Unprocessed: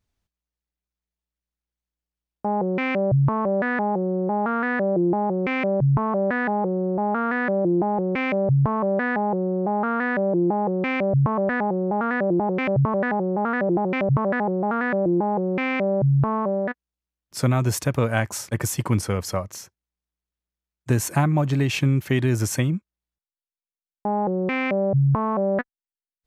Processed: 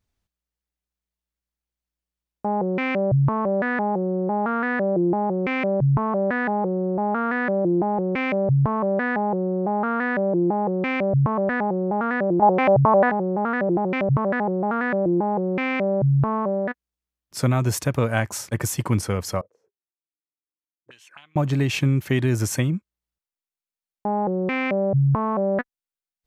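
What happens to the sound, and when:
12.42–13.10 s: peaking EQ 790 Hz +12.5 dB 1.2 oct
19.41–21.36 s: auto-wah 320–3100 Hz, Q 10, up, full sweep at -18.5 dBFS

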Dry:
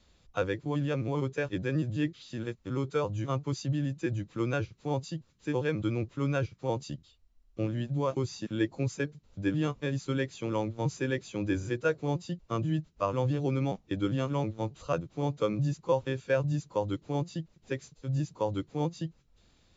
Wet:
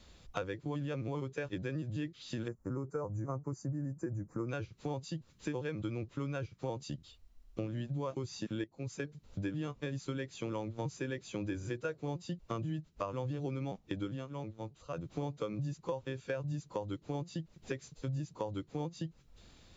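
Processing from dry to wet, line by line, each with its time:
2.48–4.49 s: Butterworth band-stop 3.2 kHz, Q 0.57
8.64–9.43 s: fade in, from -13.5 dB
14.02–15.19 s: dip -15 dB, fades 0.25 s
whole clip: compression 6:1, threshold -41 dBFS; trim +5.5 dB

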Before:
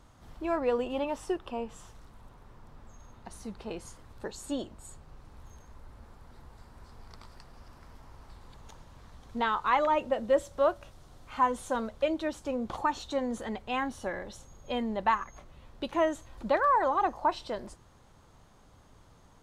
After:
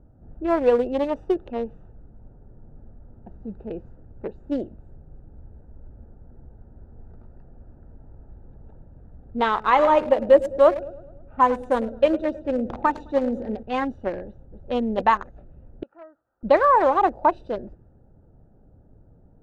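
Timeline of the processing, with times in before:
9.47–13.63 s: feedback delay 106 ms, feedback 60%, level -12.5 dB
14.25–14.74 s: echo throw 270 ms, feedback 10%, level -6 dB
15.83–16.43 s: band-pass filter 1.3 kHz, Q 5.6
whole clip: local Wiener filter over 41 samples; level-controlled noise filter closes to 1.1 kHz, open at -28 dBFS; dynamic bell 480 Hz, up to +5 dB, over -41 dBFS, Q 0.94; trim +6.5 dB

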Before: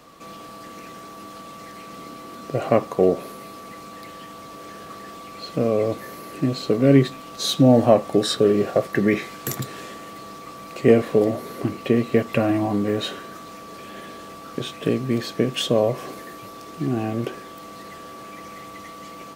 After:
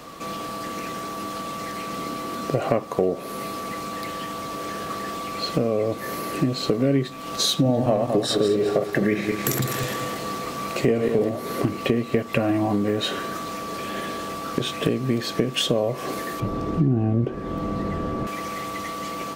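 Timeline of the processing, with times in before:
7.55–11.30 s: backward echo that repeats 104 ms, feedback 56%, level -6 dB
16.40–18.27 s: tilt EQ -4.5 dB/octave
whole clip: compression 4:1, threshold -28 dBFS; trim +8 dB

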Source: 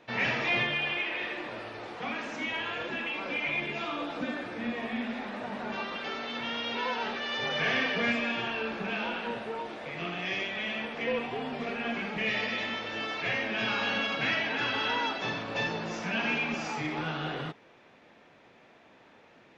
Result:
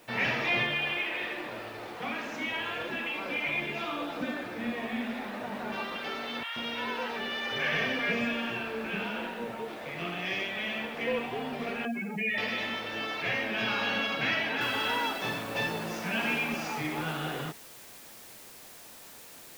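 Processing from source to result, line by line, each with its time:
6.43–9.68 s: three bands offset in time mids, highs, lows 90/130 ms, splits 870/4300 Hz
11.85–12.38 s: spectral contrast enhancement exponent 2.4
14.61 s: noise floor step -62 dB -50 dB

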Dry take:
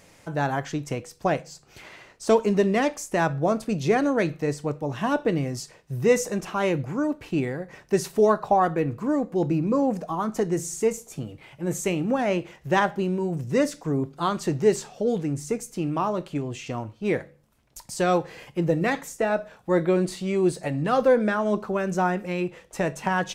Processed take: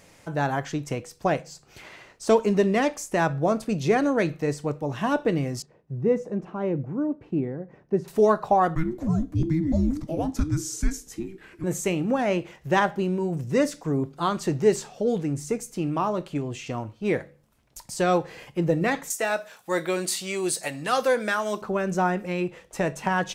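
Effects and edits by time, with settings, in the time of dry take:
5.62–8.08 s: band-pass filter 220 Hz, Q 0.6
8.75–11.64 s: frequency shift -480 Hz
19.10–21.62 s: tilt EQ +4 dB/octave

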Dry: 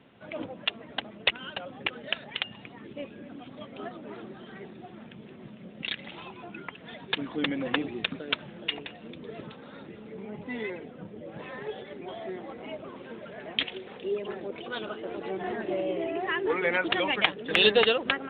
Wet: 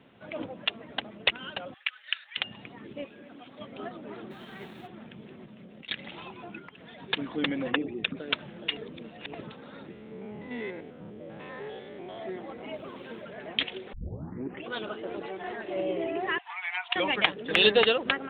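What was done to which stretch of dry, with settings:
1.74–2.37 s: high-pass 1.4 kHz 24 dB/octave
3.04–3.60 s: bass shelf 280 Hz -11 dB
4.30–4.86 s: formants flattened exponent 0.6
5.44–5.89 s: compression 5:1, threshold -45 dBFS
6.58–6.98 s: compression 3:1, threshold -45 dBFS
7.71–8.17 s: resonances exaggerated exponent 1.5
8.77–9.35 s: reverse
9.92–12.19 s: spectrogram pixelated in time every 100 ms
12.74–13.22 s: treble shelf 4 kHz +11 dB
13.93 s: tape start 0.76 s
15.26–15.76 s: peaking EQ 170 Hz -9 dB 2.9 oct
16.38–16.96 s: rippled Chebyshev high-pass 700 Hz, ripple 9 dB

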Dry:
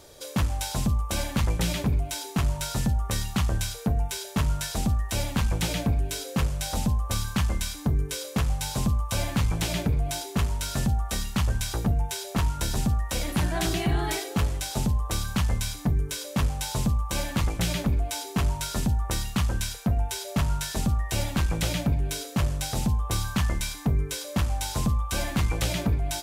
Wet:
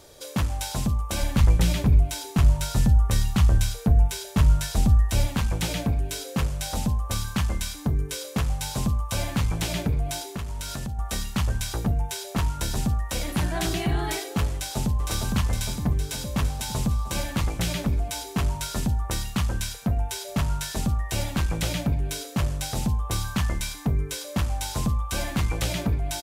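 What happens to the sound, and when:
1.21–5.27 s: bass shelf 120 Hz +10 dB
10.17–10.99 s: compression, threshold -28 dBFS
14.53–15.01 s: echo throw 460 ms, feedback 70%, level -3 dB

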